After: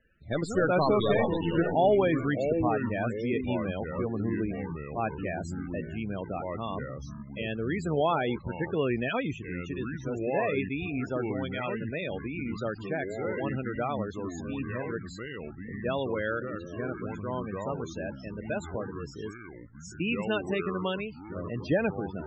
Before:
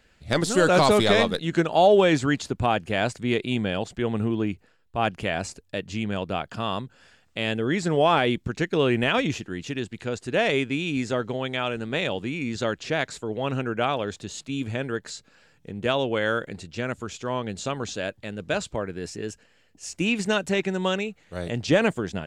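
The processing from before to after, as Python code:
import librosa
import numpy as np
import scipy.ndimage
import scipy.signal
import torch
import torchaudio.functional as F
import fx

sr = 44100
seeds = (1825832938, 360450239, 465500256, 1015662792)

y = fx.echo_pitch(x, sr, ms=158, semitones=-4, count=3, db_per_echo=-6.0)
y = fx.spec_topn(y, sr, count=32)
y = y * librosa.db_to_amplitude(-6.0)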